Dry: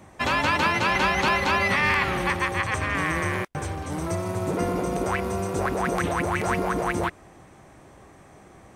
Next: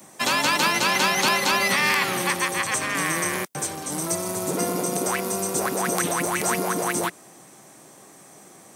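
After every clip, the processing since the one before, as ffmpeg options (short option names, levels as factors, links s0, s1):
-filter_complex "[0:a]highpass=f=150:w=0.5412,highpass=f=150:w=1.3066,acrossover=split=300|750|2900[s0][s1][s2][s3];[s3]crystalizer=i=4.5:c=0[s4];[s0][s1][s2][s4]amix=inputs=4:normalize=0"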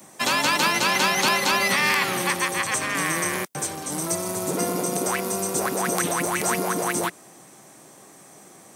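-af anull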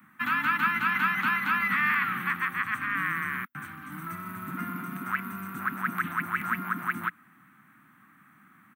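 -af "firequalizer=gain_entry='entry(150,0);entry(240,5);entry(450,-29);entry(1300,11);entry(5100,-27);entry(7400,-26);entry(15000,1)':delay=0.05:min_phase=1,volume=0.422"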